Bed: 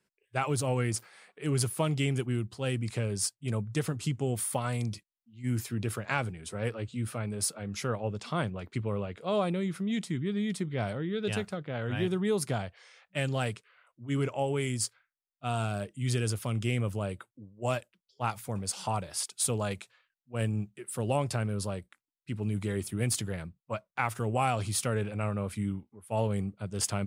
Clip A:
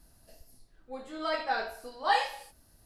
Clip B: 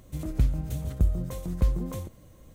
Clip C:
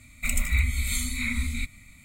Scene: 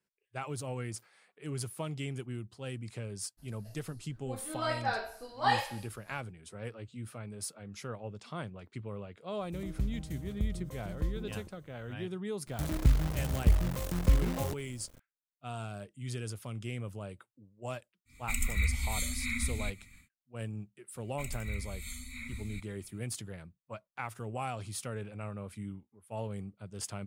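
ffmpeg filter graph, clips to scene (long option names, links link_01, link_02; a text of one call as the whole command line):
ffmpeg -i bed.wav -i cue0.wav -i cue1.wav -i cue2.wav -filter_complex "[2:a]asplit=2[link_01][link_02];[3:a]asplit=2[link_03][link_04];[0:a]volume=-9dB[link_05];[link_02]acrusher=bits=7:dc=4:mix=0:aa=0.000001[link_06];[link_03]asuperstop=centerf=640:order=8:qfactor=1.2[link_07];[1:a]atrim=end=2.85,asetpts=PTS-STARTPTS,volume=-2dB,afade=type=in:duration=0.02,afade=type=out:start_time=2.83:duration=0.02,adelay=148617S[link_08];[link_01]atrim=end=2.54,asetpts=PTS-STARTPTS,volume=-10dB,afade=type=in:duration=0.004:curve=hsin,afade=type=out:start_time=2.536:duration=0.004:curve=hsin,adelay=9400[link_09];[link_06]atrim=end=2.54,asetpts=PTS-STARTPTS,volume=-1dB,afade=type=in:duration=0.004:curve=hsin,afade=type=out:start_time=2.536:duration=0.004:curve=hsin,adelay=12460[link_10];[link_07]atrim=end=2.04,asetpts=PTS-STARTPTS,volume=-6dB,afade=type=in:duration=0.1,afade=type=out:start_time=1.94:duration=0.1,adelay=18050[link_11];[link_04]atrim=end=2.04,asetpts=PTS-STARTPTS,volume=-15dB,afade=type=in:duration=0.004:curve=hsin,afade=type=out:start_time=2.036:duration=0.004:curve=hsin,adelay=20950[link_12];[link_05][link_08][link_09][link_10][link_11][link_12]amix=inputs=6:normalize=0" out.wav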